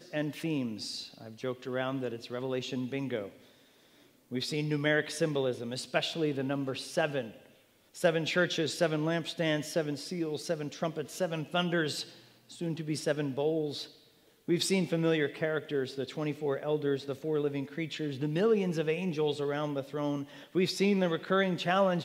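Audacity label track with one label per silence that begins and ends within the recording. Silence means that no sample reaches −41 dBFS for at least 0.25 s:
3.290000	4.310000	silence
7.360000	7.950000	silence
12.090000	12.500000	silence
13.860000	14.480000	silence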